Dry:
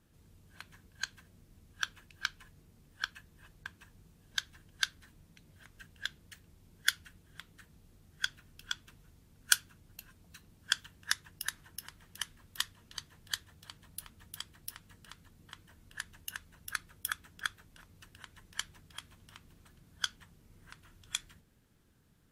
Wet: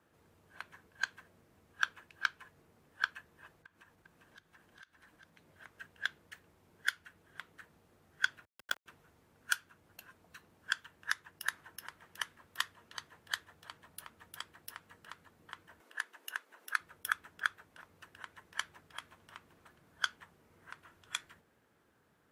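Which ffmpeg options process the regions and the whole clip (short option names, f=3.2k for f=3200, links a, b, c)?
-filter_complex "[0:a]asettb=1/sr,asplit=3[a][b][c];[a]atrim=end=3.584[d];[b]atrim=start=3.58:end=5.38,asetpts=PTS-STARTPTS,afade=t=in:d=0.004:c=qsin,afade=t=out:st=1.796:d=0.004:c=qsin,bandreject=f=410:w=8.3,acompressor=threshold=-57dB:ratio=8:attack=3.2:release=140:knee=1:detection=peak,aecho=1:1:400:0.596,atrim=end_sample=79380[e];[c]atrim=start=5.376[f];[d][e]acrossfade=d=0.004:c1=hsin:c2=qsin[g];[g][f]acrossfade=d=0.004:c1=qsin:c2=hsin,asettb=1/sr,asplit=3[h][i][j];[h]atrim=end=8.454[k];[i]atrim=start=8.45:end=8.86,asetpts=PTS-STARTPTS,afade=t=in:d=0.004:c=qsin,afade=t=out:st=0.406:d=0.004:c=qsin,bandreject=f=2k:w=5.4,bandreject=f=281.5:t=h:w=4,bandreject=f=563:t=h:w=4,bandreject=f=844.5:t=h:w=4,bandreject=f=1.126k:t=h:w=4,bandreject=f=1.4075k:t=h:w=4,bandreject=f=1.689k:t=h:w=4,bandreject=f=1.9705k:t=h:w=4,bandreject=f=2.252k:t=h:w=4,bandreject=f=2.5335k:t=h:w=4,acrusher=bits=5:dc=4:mix=0:aa=0.000001[l];[j]atrim=start=8.856[m];[k][l]acrossfade=d=0.004:c1=hsin:c2=qsin[n];[n][m]acrossfade=d=0.004:c1=qsin:c2=hsin,asettb=1/sr,asplit=3[o][p][q];[o]atrim=end=15.804[r];[p]atrim=start=15.8:end=16.8,asetpts=PTS-STARTPTS,afade=t=in:d=0.004:c=qsin,afade=t=out:st=0.996:d=0.004:c=qsin,highpass=f=290:w=0.5412,highpass=f=290:w=1.3066,acompressor=mode=upward:threshold=-58dB:ratio=2.5:attack=3.2:release=140:knee=2.83:detection=peak[s];[q]atrim=start=16.796[t];[r][s]acrossfade=d=0.004:c1=hsin:c2=qsin[u];[u][t]acrossfade=d=0.004:c1=qsin:c2=hsin,highpass=76,acrossover=split=380 2100:gain=0.2 1 0.251[v][w][x];[v][w][x]amix=inputs=3:normalize=0,alimiter=limit=-18.5dB:level=0:latency=1:release=354,volume=6.5dB"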